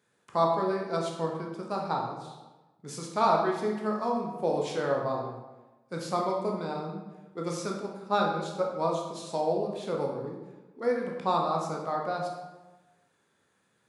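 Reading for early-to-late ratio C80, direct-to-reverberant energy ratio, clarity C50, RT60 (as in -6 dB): 5.5 dB, -0.5 dB, 3.5 dB, 1.1 s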